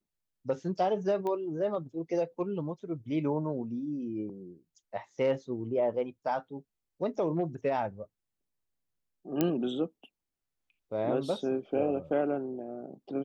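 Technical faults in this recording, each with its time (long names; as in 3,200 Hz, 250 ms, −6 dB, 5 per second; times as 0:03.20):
0:01.27: click −24 dBFS
0:09.41: click −13 dBFS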